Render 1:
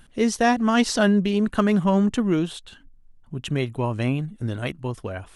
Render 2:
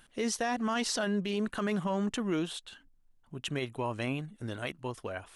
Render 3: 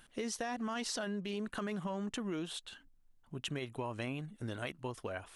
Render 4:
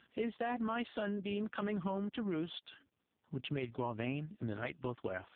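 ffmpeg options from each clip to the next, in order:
-af "lowshelf=f=280:g=-11.5,alimiter=limit=-20dB:level=0:latency=1:release=30,volume=-3dB"
-af "acompressor=threshold=-34dB:ratio=6,volume=-1dB"
-af "volume=2dB" -ar 8000 -c:a libopencore_amrnb -b:a 4750

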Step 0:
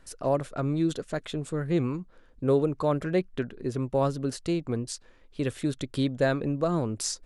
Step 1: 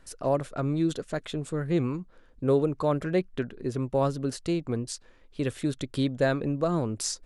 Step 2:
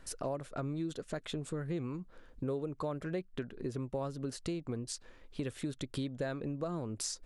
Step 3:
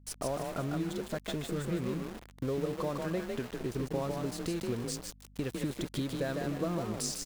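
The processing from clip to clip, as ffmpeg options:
-af anull
-af "acompressor=threshold=-37dB:ratio=4,volume=1dB"
-filter_complex "[0:a]asplit=5[a][b][c][d][e];[b]adelay=152,afreqshift=34,volume=-4dB[f];[c]adelay=304,afreqshift=68,volume=-13.9dB[g];[d]adelay=456,afreqshift=102,volume=-23.8dB[h];[e]adelay=608,afreqshift=136,volume=-33.7dB[i];[a][f][g][h][i]amix=inputs=5:normalize=0,aeval=exprs='val(0)*gte(abs(val(0)),0.0075)':c=same,aeval=exprs='val(0)+0.00126*(sin(2*PI*50*n/s)+sin(2*PI*2*50*n/s)/2+sin(2*PI*3*50*n/s)/3+sin(2*PI*4*50*n/s)/4+sin(2*PI*5*50*n/s)/5)':c=same,volume=2dB"

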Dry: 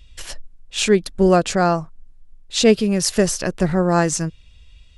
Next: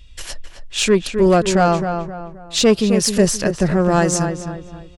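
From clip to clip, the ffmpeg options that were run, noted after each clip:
-filter_complex "[0:a]aeval=exprs='(tanh(2.51*val(0)+0.1)-tanh(0.1))/2.51':c=same,asplit=2[a][b];[b]adelay=263,lowpass=f=2.3k:p=1,volume=-7dB,asplit=2[c][d];[d]adelay=263,lowpass=f=2.3k:p=1,volume=0.38,asplit=2[e][f];[f]adelay=263,lowpass=f=2.3k:p=1,volume=0.38,asplit=2[g][h];[h]adelay=263,lowpass=f=2.3k:p=1,volume=0.38[i];[a][c][e][g][i]amix=inputs=5:normalize=0,volume=2.5dB"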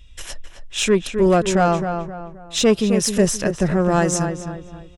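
-af "bandreject=f=4.5k:w=6.1,volume=-2dB"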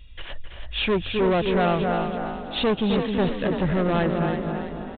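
-filter_complex "[0:a]aresample=8000,asoftclip=type=tanh:threshold=-18dB,aresample=44100,asplit=6[a][b][c][d][e][f];[b]adelay=329,afreqshift=42,volume=-7.5dB[g];[c]adelay=658,afreqshift=84,volume=-15.5dB[h];[d]adelay=987,afreqshift=126,volume=-23.4dB[i];[e]adelay=1316,afreqshift=168,volume=-31.4dB[j];[f]adelay=1645,afreqshift=210,volume=-39.3dB[k];[a][g][h][i][j][k]amix=inputs=6:normalize=0"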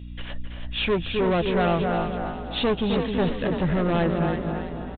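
-filter_complex "[0:a]aeval=exprs='val(0)+0.0158*(sin(2*PI*60*n/s)+sin(2*PI*2*60*n/s)/2+sin(2*PI*3*60*n/s)/3+sin(2*PI*4*60*n/s)/4+sin(2*PI*5*60*n/s)/5)':c=same,asplit=2[a][b];[b]adelay=12,volume=-13dB[c];[a][c]amix=inputs=2:normalize=0,volume=-1dB"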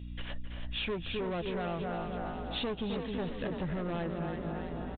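-af "acompressor=threshold=-28dB:ratio=6,volume=-4.5dB"

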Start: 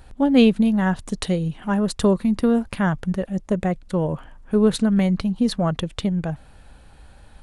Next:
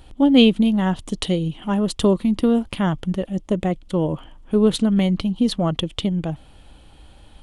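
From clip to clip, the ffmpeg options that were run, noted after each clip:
-af "equalizer=f=315:t=o:w=0.33:g=7,equalizer=f=1.6k:t=o:w=0.33:g=-7,equalizer=f=3.15k:t=o:w=0.33:g=10"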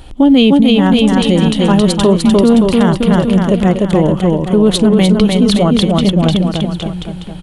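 -filter_complex "[0:a]asplit=2[a][b];[b]aecho=0:1:300|570|813|1032|1229:0.631|0.398|0.251|0.158|0.1[c];[a][c]amix=inputs=2:normalize=0,alimiter=level_in=11.5dB:limit=-1dB:release=50:level=0:latency=1,volume=-1dB"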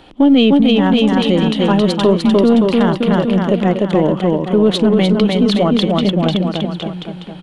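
-filter_complex "[0:a]acrossover=split=160 4900:gain=0.112 1 0.178[a][b][c];[a][b][c]amix=inputs=3:normalize=0,asplit=2[d][e];[e]aeval=exprs='clip(val(0),-1,0.15)':c=same,volume=-11.5dB[f];[d][f]amix=inputs=2:normalize=0,volume=-2.5dB"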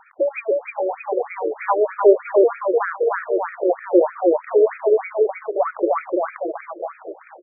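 -filter_complex "[0:a]acrossover=split=120[a][b];[a]acrusher=bits=6:mix=0:aa=0.000001[c];[c][b]amix=inputs=2:normalize=0,afftfilt=real='re*between(b*sr/1024,440*pow(1800/440,0.5+0.5*sin(2*PI*3.2*pts/sr))/1.41,440*pow(1800/440,0.5+0.5*sin(2*PI*3.2*pts/sr))*1.41)':imag='im*between(b*sr/1024,440*pow(1800/440,0.5+0.5*sin(2*PI*3.2*pts/sr))/1.41,440*pow(1800/440,0.5+0.5*sin(2*PI*3.2*pts/sr))*1.41)':win_size=1024:overlap=0.75,volume=2.5dB"

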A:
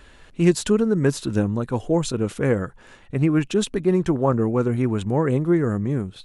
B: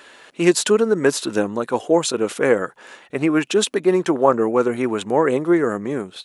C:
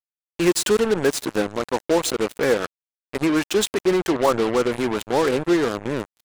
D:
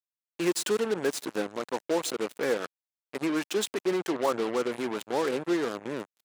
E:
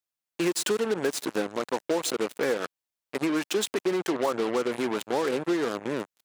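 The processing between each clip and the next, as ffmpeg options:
-af "highpass=390,volume=7.5dB"
-af "acontrast=51,aecho=1:1:159:0.0708,acrusher=bits=2:mix=0:aa=0.5,volume=-7.5dB"
-af "highpass=180,volume=-8dB"
-af "acompressor=threshold=-27dB:ratio=4,volume=4.5dB"

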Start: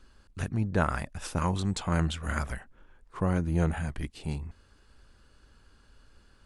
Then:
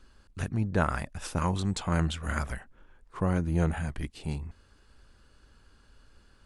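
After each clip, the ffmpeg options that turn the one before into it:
-af anull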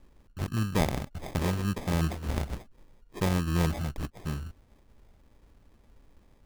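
-af "acrusher=samples=31:mix=1:aa=0.000001"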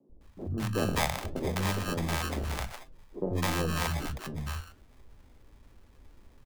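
-filter_complex "[0:a]acrossover=split=200|1500|3500[a][b][c][d];[a]asoftclip=type=hard:threshold=-35.5dB[e];[e][b][c][d]amix=inputs=4:normalize=0,acrossover=split=180|610[f][g][h];[f]adelay=90[i];[h]adelay=210[j];[i][g][j]amix=inputs=3:normalize=0,flanger=delay=7.5:depth=4.7:regen=79:speed=1.4:shape=sinusoidal,volume=8dB"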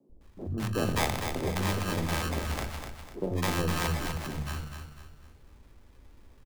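-af "aecho=1:1:249|498|747|996:0.447|0.17|0.0645|0.0245"

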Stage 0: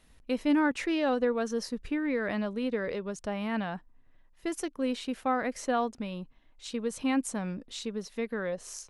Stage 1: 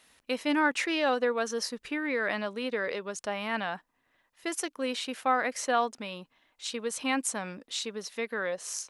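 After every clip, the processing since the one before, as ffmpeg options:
-af "highpass=f=910:p=1,volume=6.5dB"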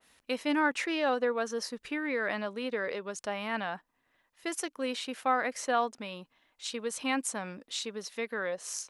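-af "adynamicequalizer=threshold=0.01:dfrequency=2000:dqfactor=0.7:tfrequency=2000:tqfactor=0.7:attack=5:release=100:ratio=0.375:range=2:mode=cutabove:tftype=highshelf,volume=-1.5dB"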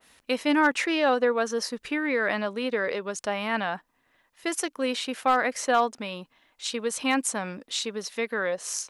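-af "asoftclip=type=hard:threshold=-18.5dB,volume=6dB"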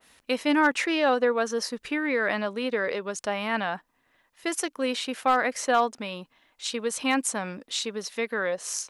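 -af anull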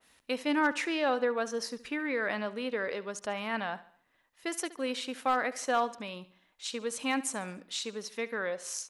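-af "aecho=1:1:71|142|213|284:0.133|0.06|0.027|0.0122,volume=-6dB"

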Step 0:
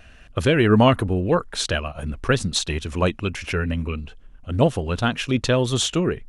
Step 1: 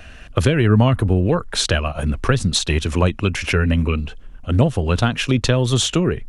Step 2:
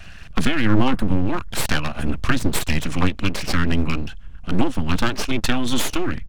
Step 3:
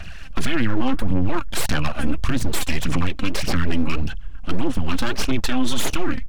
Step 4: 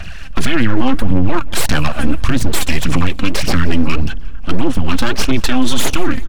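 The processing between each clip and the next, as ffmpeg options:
-filter_complex "[0:a]acrossover=split=140[a][b];[b]acompressor=threshold=-24dB:ratio=6[c];[a][c]amix=inputs=2:normalize=0,volume=8dB"
-af "firequalizer=gain_entry='entry(210,0);entry(320,-27);entry(680,-5);entry(1600,-1)':delay=0.05:min_phase=1,aeval=exprs='abs(val(0))':c=same,highshelf=f=7.3k:g=-5.5,volume=2.5dB"
-af "aphaser=in_gain=1:out_gain=1:delay=3.9:decay=0.54:speed=1.7:type=sinusoidal,alimiter=level_in=8dB:limit=-1dB:release=50:level=0:latency=1,volume=-7.5dB"
-af "aecho=1:1:178|356|534|712:0.0708|0.0375|0.0199|0.0105,volume=6.5dB"

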